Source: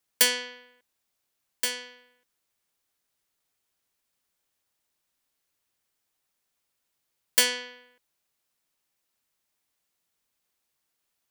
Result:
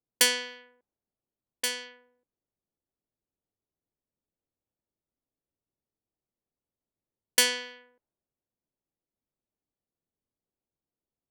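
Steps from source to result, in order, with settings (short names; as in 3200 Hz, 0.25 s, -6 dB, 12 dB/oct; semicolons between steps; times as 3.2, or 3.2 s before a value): low-pass opened by the level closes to 450 Hz, open at -29 dBFS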